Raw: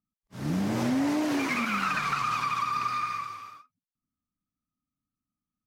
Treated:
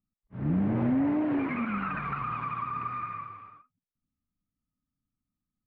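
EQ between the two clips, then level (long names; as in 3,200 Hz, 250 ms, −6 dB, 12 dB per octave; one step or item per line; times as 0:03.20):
low-pass filter 2,500 Hz 24 dB per octave
spectral tilt −2.5 dB per octave
−4.0 dB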